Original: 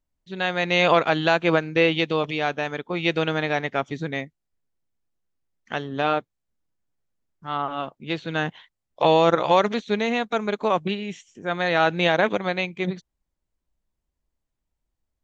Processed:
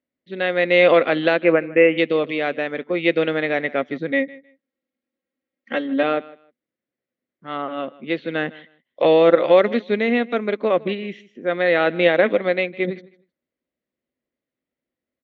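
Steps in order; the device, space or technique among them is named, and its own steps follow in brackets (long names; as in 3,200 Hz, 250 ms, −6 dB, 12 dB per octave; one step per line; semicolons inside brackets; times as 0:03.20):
0:01.40–0:01.98: elliptic low-pass filter 2,700 Hz, stop band 40 dB
0:04.11–0:06.03: comb filter 3.7 ms, depth 86%
kitchen radio (loudspeaker in its box 180–4,000 Hz, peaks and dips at 250 Hz +10 dB, 360 Hz +5 dB, 530 Hz +10 dB, 910 Hz −8 dB, 2,000 Hz +8 dB)
repeating echo 156 ms, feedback 19%, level −21 dB
level −1 dB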